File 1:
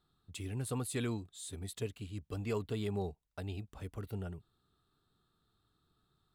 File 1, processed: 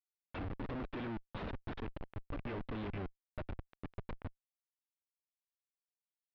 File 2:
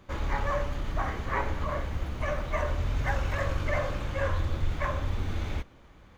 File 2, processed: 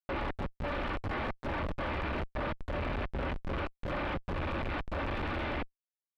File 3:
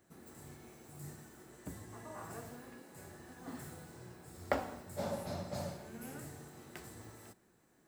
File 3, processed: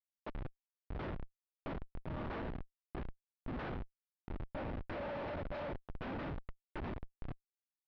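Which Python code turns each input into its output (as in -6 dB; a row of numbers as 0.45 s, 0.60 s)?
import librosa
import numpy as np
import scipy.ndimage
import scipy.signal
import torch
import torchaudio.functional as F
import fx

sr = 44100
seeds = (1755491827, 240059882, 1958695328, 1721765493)

y = fx.rattle_buzz(x, sr, strikes_db=-33.0, level_db=-32.0)
y = fx.tilt_eq(y, sr, slope=3.5)
y = y + 0.6 * np.pad(y, (int(3.4 * sr / 1000.0), 0))[:len(y)]
y = fx.over_compress(y, sr, threshold_db=-37.0, ratio=-0.5)
y = fx.schmitt(y, sr, flips_db=-37.5)
y = scipy.ndimage.gaussian_filter1d(y, 3.1, mode='constant')
y = np.clip(y, -10.0 ** (-37.0 / 20.0), 10.0 ** (-37.0 / 20.0))
y = F.gain(torch.from_numpy(y), 5.0).numpy()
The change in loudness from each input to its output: -4.5 LU, -4.5 LU, +0.5 LU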